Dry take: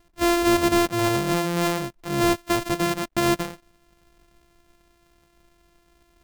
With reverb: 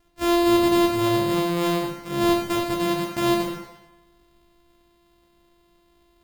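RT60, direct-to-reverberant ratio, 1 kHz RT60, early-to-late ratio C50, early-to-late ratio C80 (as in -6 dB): 0.95 s, -1.0 dB, 0.95 s, 3.5 dB, 6.5 dB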